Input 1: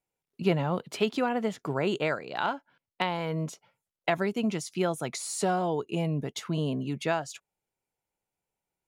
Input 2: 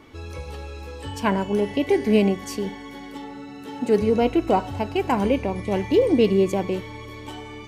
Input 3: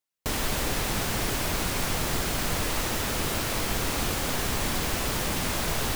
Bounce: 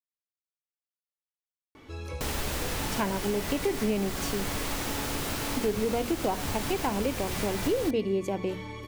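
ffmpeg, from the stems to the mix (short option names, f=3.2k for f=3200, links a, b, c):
-filter_complex "[1:a]bandreject=f=47.05:t=h:w=4,bandreject=f=94.1:t=h:w=4,bandreject=f=141.15:t=h:w=4,bandreject=f=188.2:t=h:w=4,bandreject=f=235.25:t=h:w=4,adelay=1750,volume=-2.5dB[a];[2:a]adelay=1950,volume=-3.5dB[b];[a][b]amix=inputs=2:normalize=0,acompressor=threshold=-26dB:ratio=3"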